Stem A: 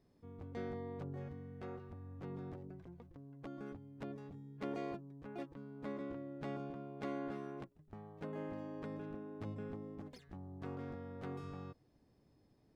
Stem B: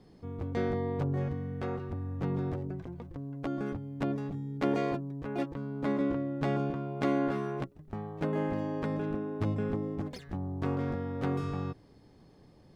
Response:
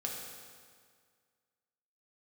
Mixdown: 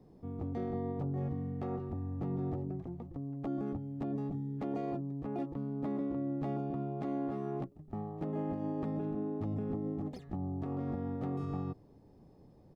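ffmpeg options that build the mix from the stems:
-filter_complex "[0:a]volume=1.12[s0];[1:a]lowpass=f=1000:w=0.5412,lowpass=f=1000:w=1.3066,volume=-1,adelay=1.5,volume=0.841[s1];[s0][s1]amix=inputs=2:normalize=0,alimiter=level_in=1.68:limit=0.0631:level=0:latency=1:release=46,volume=0.596"

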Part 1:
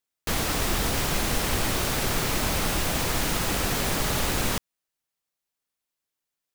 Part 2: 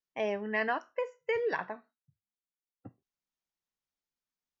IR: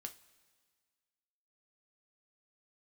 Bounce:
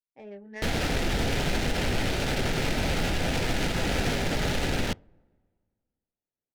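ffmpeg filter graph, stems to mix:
-filter_complex "[0:a]adelay=350,volume=1,asplit=2[s0][s1];[s1]volume=0.631[s2];[1:a]bandreject=f=670:w=12,flanger=delay=17:depth=3.4:speed=1.3,volume=0.562[s3];[2:a]atrim=start_sample=2205[s4];[s2][s4]afir=irnorm=-1:irlink=0[s5];[s0][s3][s5]amix=inputs=3:normalize=0,adynamicsmooth=sensitivity=4.5:basefreq=940,equalizer=f=1100:t=o:w=0.36:g=-13.5,alimiter=limit=0.141:level=0:latency=1:release=54"

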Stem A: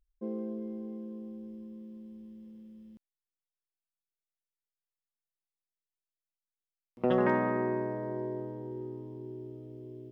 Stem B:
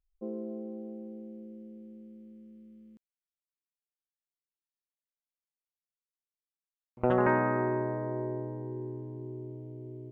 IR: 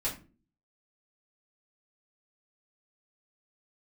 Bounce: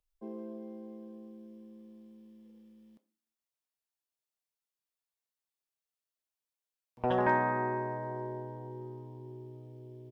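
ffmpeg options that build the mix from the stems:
-filter_complex "[0:a]highpass=f=390:w=0.5412,highpass=f=390:w=1.3066,volume=0.841,asplit=2[s0][s1];[s1]volume=0.355[s2];[1:a]volume=-1,adelay=2.3,volume=0.562[s3];[2:a]atrim=start_sample=2205[s4];[s2][s4]afir=irnorm=-1:irlink=0[s5];[s0][s3][s5]amix=inputs=3:normalize=0,equalizer=f=1900:w=1.5:g=-2.5"

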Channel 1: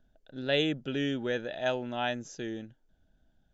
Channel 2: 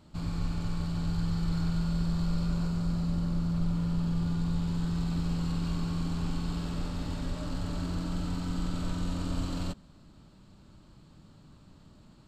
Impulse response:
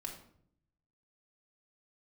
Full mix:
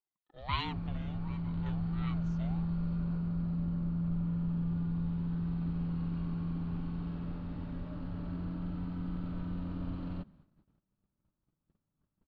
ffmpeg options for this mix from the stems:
-filter_complex "[0:a]highpass=210,aecho=1:1:5.3:0.57,aeval=exprs='val(0)*sin(2*PI*420*n/s+420*0.45/1.5*sin(2*PI*1.5*n/s))':c=same,volume=1.26,afade=t=out:st=0.65:d=0.33:silence=0.237137,afade=t=in:st=1.84:d=0.55:silence=0.446684,asplit=2[s0][s1];[s1]volume=0.0794[s2];[1:a]lowpass=2600,adynamicequalizer=threshold=0.00708:dfrequency=170:dqfactor=0.75:tfrequency=170:tqfactor=0.75:attack=5:release=100:ratio=0.375:range=3:mode=boostabove:tftype=bell,adelay=500,volume=0.355[s3];[2:a]atrim=start_sample=2205[s4];[s2][s4]afir=irnorm=-1:irlink=0[s5];[s0][s3][s5]amix=inputs=3:normalize=0,agate=range=0.0794:threshold=0.00112:ratio=16:detection=peak,lowpass=4000"

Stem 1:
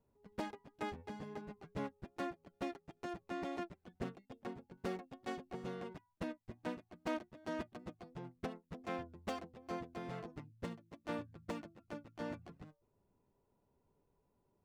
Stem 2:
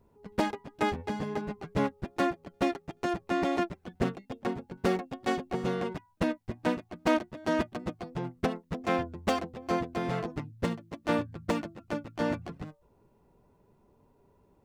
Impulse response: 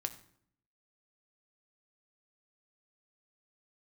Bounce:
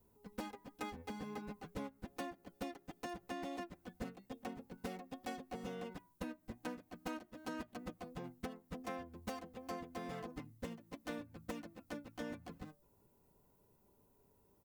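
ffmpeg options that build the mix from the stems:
-filter_complex "[0:a]aemphasis=mode=production:type=75fm,volume=0.891[s0];[1:a]adelay=3.9,volume=0.316,asplit=2[s1][s2];[s2]volume=0.133[s3];[2:a]atrim=start_sample=2205[s4];[s3][s4]afir=irnorm=-1:irlink=0[s5];[s0][s1][s5]amix=inputs=3:normalize=0,acompressor=threshold=0.00794:ratio=4"

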